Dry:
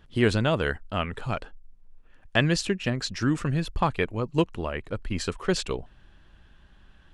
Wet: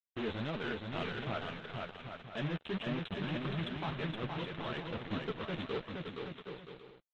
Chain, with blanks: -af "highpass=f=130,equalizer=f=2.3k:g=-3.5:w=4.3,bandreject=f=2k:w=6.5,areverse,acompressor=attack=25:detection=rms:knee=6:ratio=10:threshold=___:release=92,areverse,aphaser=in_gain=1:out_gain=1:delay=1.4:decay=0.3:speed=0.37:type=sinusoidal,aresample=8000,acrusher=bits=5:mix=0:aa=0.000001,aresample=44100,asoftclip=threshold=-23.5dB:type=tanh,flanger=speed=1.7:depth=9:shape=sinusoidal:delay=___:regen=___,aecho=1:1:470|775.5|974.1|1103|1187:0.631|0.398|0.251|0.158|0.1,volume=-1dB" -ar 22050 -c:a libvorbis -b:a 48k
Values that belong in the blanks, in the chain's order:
-33dB, 4.5, -7